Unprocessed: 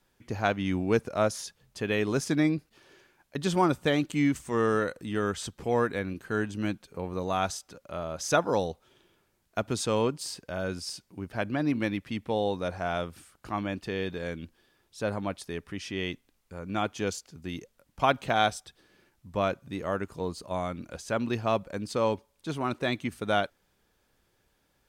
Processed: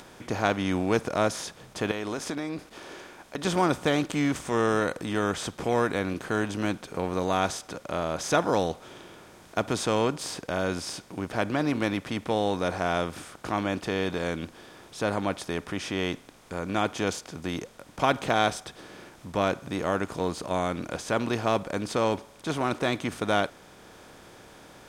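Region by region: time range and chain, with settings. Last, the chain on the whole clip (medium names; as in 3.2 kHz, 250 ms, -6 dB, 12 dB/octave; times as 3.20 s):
1.91–3.45 s: peaking EQ 130 Hz -11.5 dB 0.71 oct + compression 10:1, threshold -34 dBFS
whole clip: spectral levelling over time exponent 0.6; upward compressor, threshold -43 dBFS; trim -2 dB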